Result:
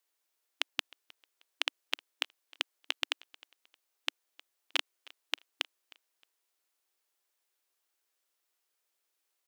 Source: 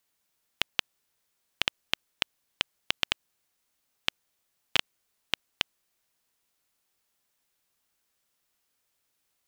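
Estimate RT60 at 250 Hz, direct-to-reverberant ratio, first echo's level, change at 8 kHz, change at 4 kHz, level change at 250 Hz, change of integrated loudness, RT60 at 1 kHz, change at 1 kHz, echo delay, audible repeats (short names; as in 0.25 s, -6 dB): none, none, -23.5 dB, -4.5 dB, -4.5 dB, -10.0 dB, -4.5 dB, none, -4.5 dB, 0.311 s, 2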